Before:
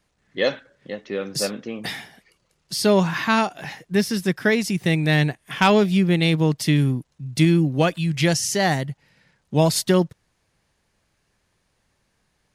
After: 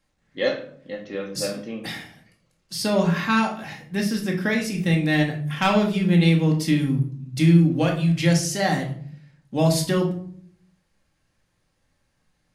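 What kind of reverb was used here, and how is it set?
simulated room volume 660 m³, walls furnished, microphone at 2.2 m; trim -5.5 dB

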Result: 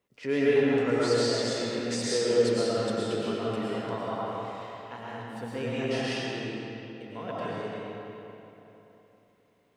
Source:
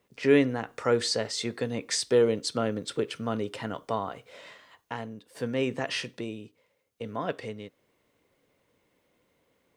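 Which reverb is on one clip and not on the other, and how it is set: algorithmic reverb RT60 3.3 s, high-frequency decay 0.7×, pre-delay 75 ms, DRR -8.5 dB; trim -8.5 dB

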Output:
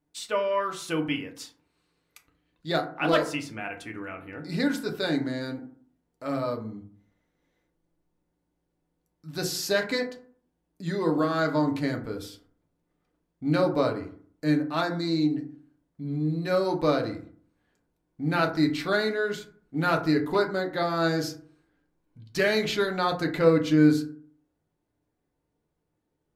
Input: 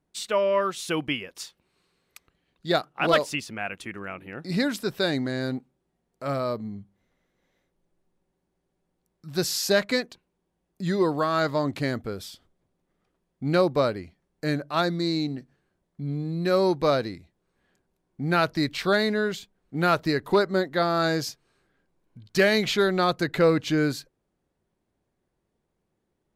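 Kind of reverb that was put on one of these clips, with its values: FDN reverb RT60 0.51 s, low-frequency decay 1.2×, high-frequency decay 0.4×, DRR 2 dB; trim -4.5 dB

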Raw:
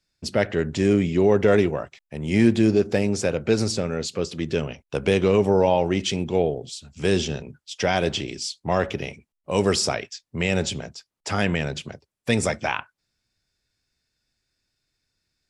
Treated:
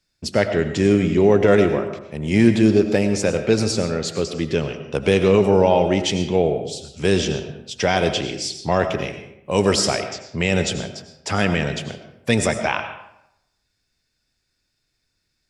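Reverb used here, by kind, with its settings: algorithmic reverb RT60 0.82 s, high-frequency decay 0.65×, pre-delay 60 ms, DRR 8 dB; trim +3 dB

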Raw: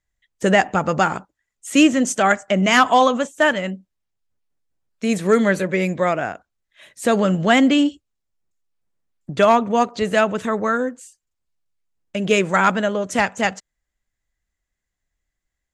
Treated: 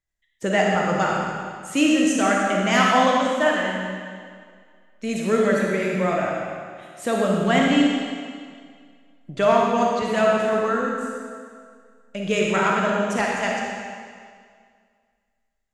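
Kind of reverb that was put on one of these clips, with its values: algorithmic reverb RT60 2 s, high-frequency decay 0.95×, pre-delay 5 ms, DRR -2.5 dB; trim -7 dB

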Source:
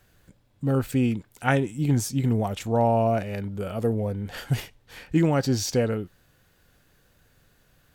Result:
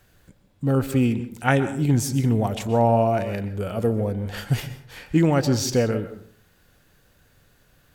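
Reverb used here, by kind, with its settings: plate-style reverb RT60 0.55 s, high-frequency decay 0.55×, pre-delay 110 ms, DRR 12 dB; trim +2.5 dB

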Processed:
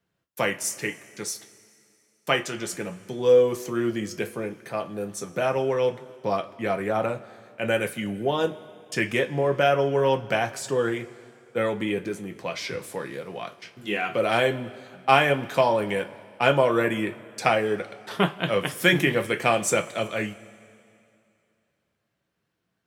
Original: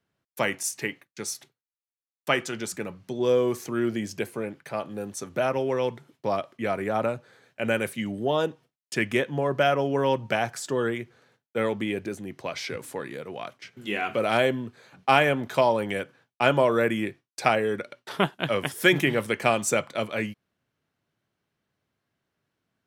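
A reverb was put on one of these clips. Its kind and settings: two-slope reverb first 0.2 s, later 2.6 s, from -22 dB, DRR 5 dB

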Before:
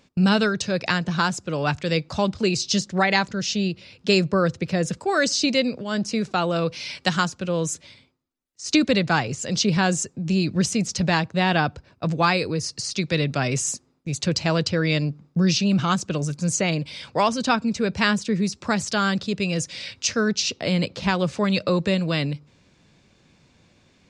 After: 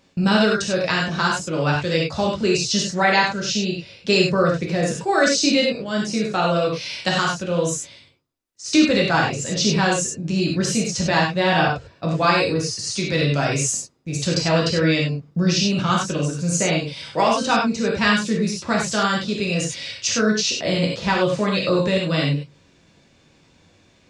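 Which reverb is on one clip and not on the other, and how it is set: gated-style reverb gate 120 ms flat, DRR -3 dB; trim -1.5 dB

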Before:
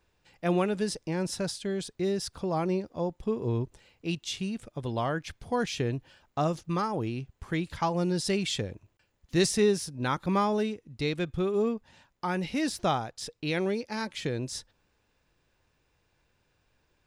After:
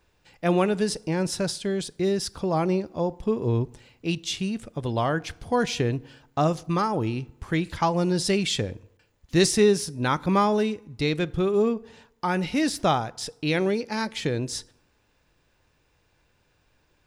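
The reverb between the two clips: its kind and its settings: FDN reverb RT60 0.81 s, low-frequency decay 1×, high-frequency decay 0.6×, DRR 19 dB; trim +5 dB

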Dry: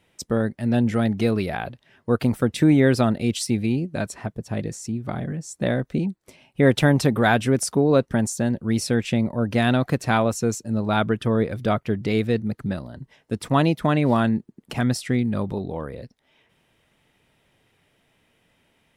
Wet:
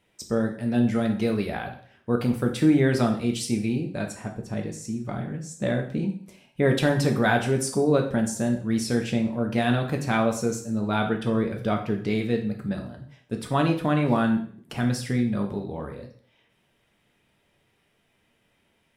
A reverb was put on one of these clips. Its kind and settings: plate-style reverb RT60 0.52 s, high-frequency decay 0.95×, DRR 2.5 dB; trim -5 dB

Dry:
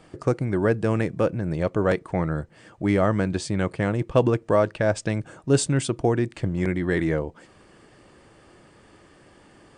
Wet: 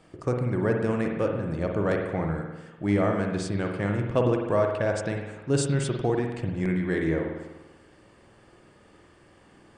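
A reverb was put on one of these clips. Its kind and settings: spring tank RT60 1.1 s, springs 49 ms, chirp 60 ms, DRR 2 dB; trim -5 dB

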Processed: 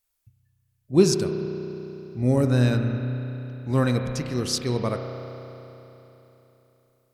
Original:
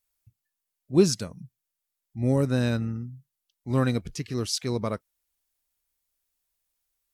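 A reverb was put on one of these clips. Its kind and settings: spring tank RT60 3.5 s, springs 32 ms, chirp 40 ms, DRR 4.5 dB; trim +2 dB

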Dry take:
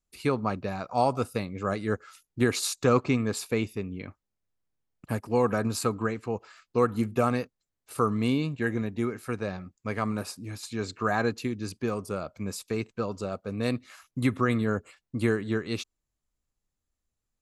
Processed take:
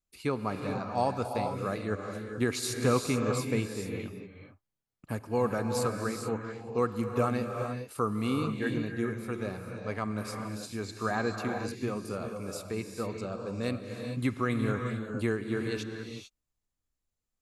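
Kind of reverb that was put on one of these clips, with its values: gated-style reverb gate 470 ms rising, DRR 4 dB; trim -4.5 dB

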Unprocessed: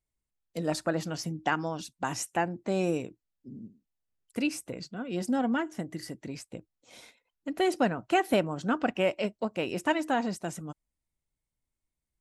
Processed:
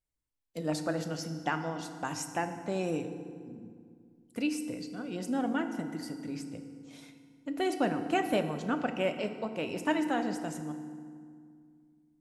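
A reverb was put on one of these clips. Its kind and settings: FDN reverb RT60 2.1 s, low-frequency decay 1.45×, high-frequency decay 0.65×, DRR 7 dB; trim -4 dB

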